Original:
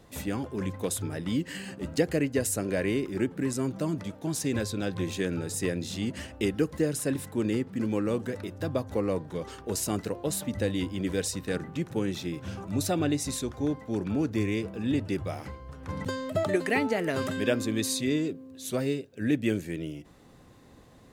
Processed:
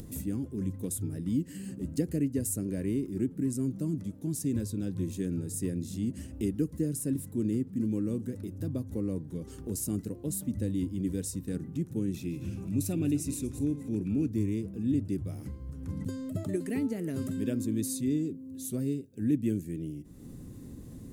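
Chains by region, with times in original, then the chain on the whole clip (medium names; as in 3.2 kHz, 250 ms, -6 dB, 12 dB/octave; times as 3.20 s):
12.14–14.28 s: backward echo that repeats 121 ms, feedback 48%, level -14 dB + peaking EQ 2.5 kHz +12.5 dB 0.29 oct + upward compressor, threshold -30 dBFS
whole clip: FFT filter 280 Hz 0 dB, 750 Hz -20 dB, 3.8 kHz -16 dB, 10 kHz -1 dB; upward compressor, threshold -33 dBFS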